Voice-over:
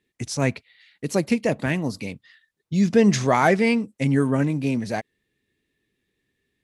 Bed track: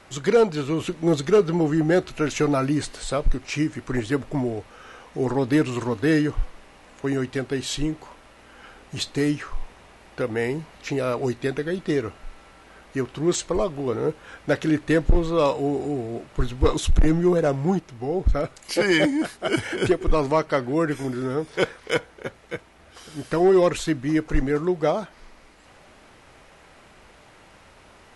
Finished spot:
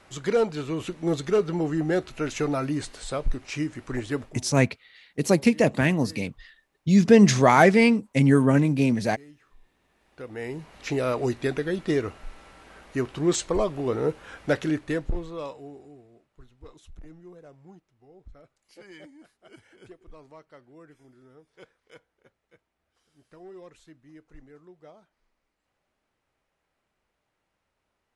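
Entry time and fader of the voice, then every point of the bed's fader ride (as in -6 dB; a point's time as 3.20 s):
4.15 s, +2.0 dB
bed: 4.24 s -5 dB
4.45 s -27.5 dB
9.55 s -27.5 dB
10.83 s -1 dB
14.47 s -1 dB
16.31 s -28 dB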